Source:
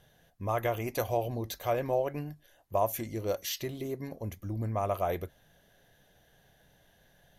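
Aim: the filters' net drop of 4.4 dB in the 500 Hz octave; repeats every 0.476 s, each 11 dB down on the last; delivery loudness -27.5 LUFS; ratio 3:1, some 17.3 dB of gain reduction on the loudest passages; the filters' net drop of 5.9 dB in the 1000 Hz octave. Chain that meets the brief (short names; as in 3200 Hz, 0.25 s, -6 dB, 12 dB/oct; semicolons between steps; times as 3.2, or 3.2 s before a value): bell 500 Hz -3 dB; bell 1000 Hz -7.5 dB; compressor 3:1, threshold -53 dBFS; feedback echo 0.476 s, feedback 28%, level -11 dB; gain +24 dB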